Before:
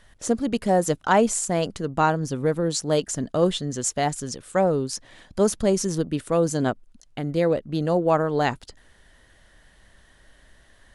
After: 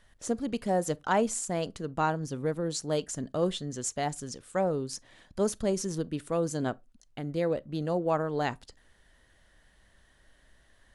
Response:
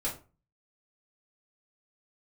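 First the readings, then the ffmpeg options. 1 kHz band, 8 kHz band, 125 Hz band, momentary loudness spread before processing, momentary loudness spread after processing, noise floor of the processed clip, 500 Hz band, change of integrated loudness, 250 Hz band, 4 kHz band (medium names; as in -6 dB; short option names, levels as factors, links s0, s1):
-7.5 dB, -7.5 dB, -7.5 dB, 7 LU, 7 LU, -64 dBFS, -7.5 dB, -7.5 dB, -7.5 dB, -7.5 dB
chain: -filter_complex "[0:a]asplit=2[s0][s1];[1:a]atrim=start_sample=2205,asetrate=83790,aresample=44100,adelay=31[s2];[s1][s2]afir=irnorm=-1:irlink=0,volume=0.0668[s3];[s0][s3]amix=inputs=2:normalize=0,volume=0.422"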